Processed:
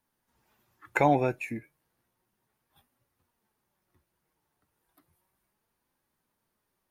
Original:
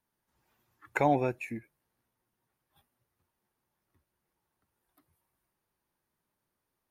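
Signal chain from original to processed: flange 0.33 Hz, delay 3.5 ms, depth 3.5 ms, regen +72%; gain +8 dB

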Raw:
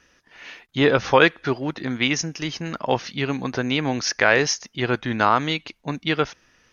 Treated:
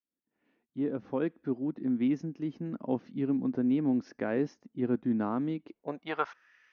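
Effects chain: opening faded in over 2.10 s; band-pass sweep 250 Hz -> 1900 Hz, 5.55–6.52; 4.27–5.66 mismatched tape noise reduction decoder only

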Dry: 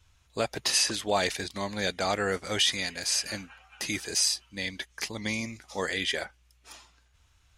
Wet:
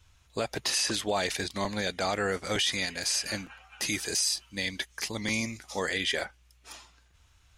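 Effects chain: 3.82–5.8 high shelf 5200 Hz +5 dB; limiter -20 dBFS, peak gain reduction 9 dB; crackling interface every 0.91 s, samples 256, repeat, from 0.73; gain +2 dB

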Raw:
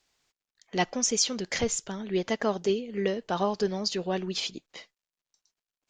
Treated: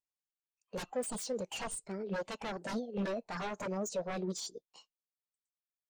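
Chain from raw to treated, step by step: formant shift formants +6 st; wavefolder -27 dBFS; spectral expander 1.5:1

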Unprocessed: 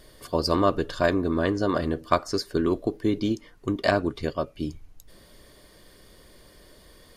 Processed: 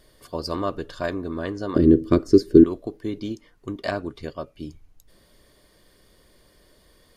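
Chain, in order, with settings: 1.76–2.64 resonant low shelf 520 Hz +13.5 dB, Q 3; gain -5 dB

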